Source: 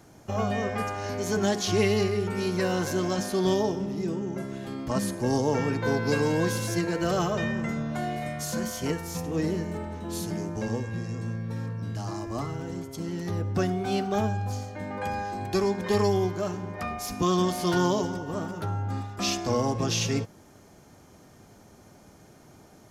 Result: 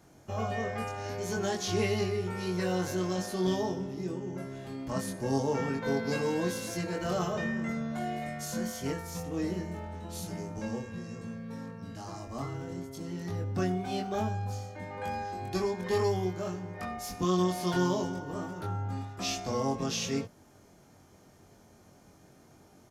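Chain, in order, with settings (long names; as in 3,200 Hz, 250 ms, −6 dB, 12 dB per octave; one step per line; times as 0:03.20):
double-tracking delay 22 ms −2.5 dB
level −7 dB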